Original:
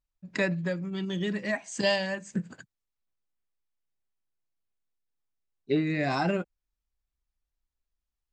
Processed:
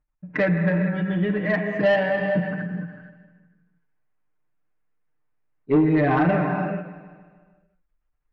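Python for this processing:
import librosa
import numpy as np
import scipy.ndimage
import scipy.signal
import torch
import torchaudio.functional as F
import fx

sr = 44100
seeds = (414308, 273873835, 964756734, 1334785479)

p1 = scipy.signal.sosfilt(scipy.signal.butter(4, 2100.0, 'lowpass', fs=sr, output='sos'), x)
p2 = fx.rev_gated(p1, sr, seeds[0], gate_ms=490, shape='flat', drr_db=5.0)
p3 = fx.level_steps(p2, sr, step_db=22)
p4 = p2 + (p3 * librosa.db_to_amplitude(-1.0))
p5 = p4 + 0.81 * np.pad(p4, (int(6.6 * sr / 1000.0), 0))[:len(p4)]
p6 = fx.echo_feedback(p5, sr, ms=153, feedback_pct=58, wet_db=-15.5)
p7 = 10.0 ** (-16.5 / 20.0) * np.tanh(p6 / 10.0 ** (-16.5 / 20.0))
p8 = fx.end_taper(p7, sr, db_per_s=160.0)
y = p8 * librosa.db_to_amplitude(5.0)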